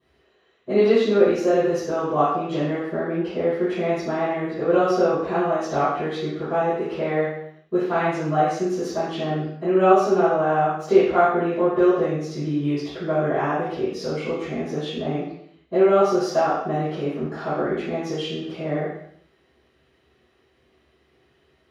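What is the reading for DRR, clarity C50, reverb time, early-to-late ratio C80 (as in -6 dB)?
-19.0 dB, 0.0 dB, 0.65 s, 4.0 dB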